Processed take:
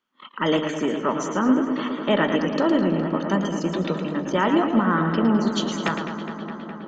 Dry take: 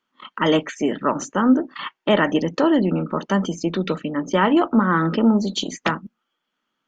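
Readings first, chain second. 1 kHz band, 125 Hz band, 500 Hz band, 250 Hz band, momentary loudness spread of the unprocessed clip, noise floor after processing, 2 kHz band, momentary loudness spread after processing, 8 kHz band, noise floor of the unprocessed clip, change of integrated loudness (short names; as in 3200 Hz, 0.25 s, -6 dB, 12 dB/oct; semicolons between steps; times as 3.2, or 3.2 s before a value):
-2.0 dB, -1.5 dB, -1.5 dB, -2.0 dB, 8 LU, -39 dBFS, -2.0 dB, 8 LU, n/a, -78 dBFS, -2.0 dB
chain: darkening echo 0.207 s, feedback 84%, low-pass 4400 Hz, level -10.5 dB; warbling echo 0.113 s, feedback 33%, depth 90 cents, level -8 dB; gain -3.5 dB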